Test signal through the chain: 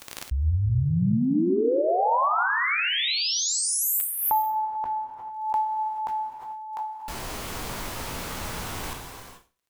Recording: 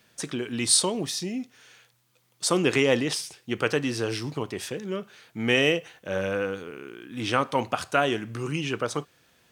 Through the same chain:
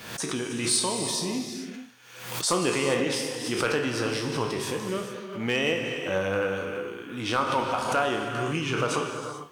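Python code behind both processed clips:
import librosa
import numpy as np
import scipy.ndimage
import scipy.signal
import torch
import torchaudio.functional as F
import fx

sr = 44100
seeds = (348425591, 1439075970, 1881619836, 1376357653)

y = fx.spec_trails(x, sr, decay_s=0.31)
y = fx.peak_eq(y, sr, hz=1000.0, db=5.0, octaves=0.77)
y = fx.rider(y, sr, range_db=3, speed_s=0.5)
y = fx.dmg_crackle(y, sr, seeds[0], per_s=35.0, level_db=-51.0)
y = np.clip(y, -10.0 ** (-11.5 / 20.0), 10.0 ** (-11.5 / 20.0))
y = fx.rev_gated(y, sr, seeds[1], gate_ms=470, shape='flat', drr_db=3.5)
y = fx.pre_swell(y, sr, db_per_s=66.0)
y = y * 10.0 ** (-4.0 / 20.0)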